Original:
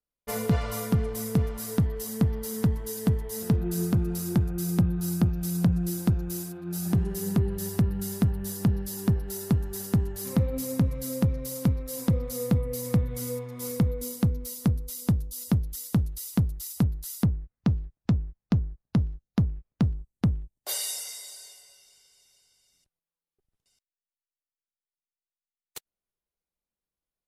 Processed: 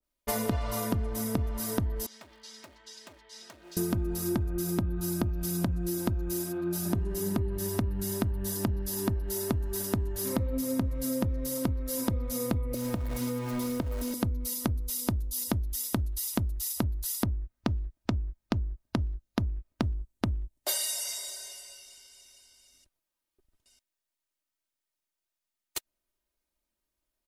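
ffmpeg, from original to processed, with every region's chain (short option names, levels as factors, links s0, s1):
-filter_complex "[0:a]asettb=1/sr,asplit=3[s0][s1][s2];[s0]atrim=end=2.064[s3];[s1]atrim=start=2.06:end=3.77,asetpts=PTS-STARTPTS,afade=t=in:d=0.004:c=qsin,afade=t=out:st=1.706:d=0.004:c=qsin,lowpass=f=4700:w=0.5412,lowpass=f=4700:w=1.3066,asoftclip=type=hard:threshold=0.0447,aderivative[s4];[s2]atrim=start=3.766[s5];[s3][s4]acrossfade=d=0.004:c1=hsin:c2=qsin[s6];[s6][s5]acrossfade=d=0.004:c1=qsin:c2=hsin,asettb=1/sr,asplit=3[s7][s8][s9];[s7]atrim=end=12.744[s10];[s8]atrim=start=12.74:end=14.14,asetpts=PTS-STARTPTS,afade=t=in:d=0.004:c=qsin,afade=t=out:st=1.396:d=0.004:c=qsin,aeval=exprs='val(0)+0.5*0.0178*sgn(val(0))':c=same,acrossover=split=380|5400[s11][s12][s13];[s11]acompressor=threshold=0.02:ratio=4[s14];[s12]acompressor=threshold=0.01:ratio=4[s15];[s13]acompressor=threshold=0.00501:ratio=4[s16];[s14][s15][s16]amix=inputs=3:normalize=0[s17];[s9]atrim=start=14.136[s18];[s10][s17]acrossfade=d=0.004:c1=hsin:c2=qsin[s19];[s19][s18]acrossfade=d=0.004:c1=qsin:c2=hsin,aecho=1:1:3.2:0.61,acompressor=threshold=0.0251:ratio=6,adynamicequalizer=threshold=0.00251:dfrequency=1600:dqfactor=0.7:tfrequency=1600:tqfactor=0.7:attack=5:release=100:ratio=0.375:range=2:mode=cutabove:tftype=highshelf,volume=1.88"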